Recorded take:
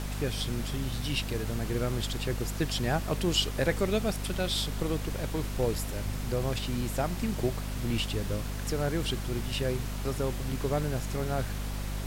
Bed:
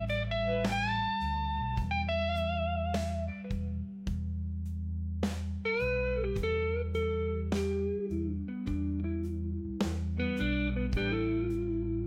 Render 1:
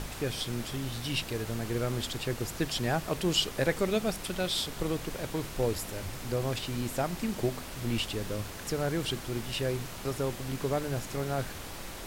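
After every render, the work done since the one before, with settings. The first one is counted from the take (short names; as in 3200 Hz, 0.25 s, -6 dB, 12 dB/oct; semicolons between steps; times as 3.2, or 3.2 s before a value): de-hum 50 Hz, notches 5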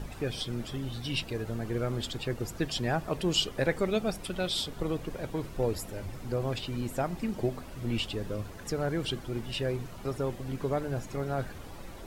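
denoiser 11 dB, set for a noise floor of -42 dBFS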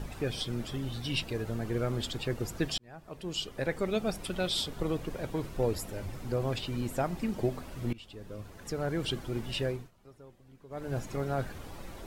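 2.78–4.23 fade in linear; 7.93–9.11 fade in, from -22.5 dB; 9.64–10.96 dip -21 dB, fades 0.27 s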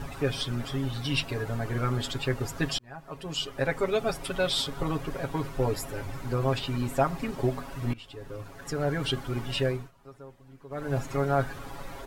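bell 1200 Hz +6 dB 1.6 oct; comb 7.3 ms, depth 86%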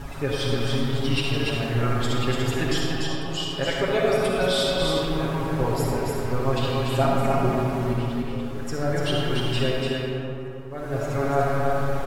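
echo 0.291 s -3.5 dB; digital reverb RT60 2.6 s, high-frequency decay 0.5×, pre-delay 15 ms, DRR -2.5 dB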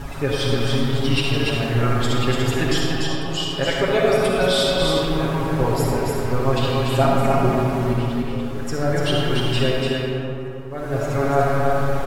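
gain +4 dB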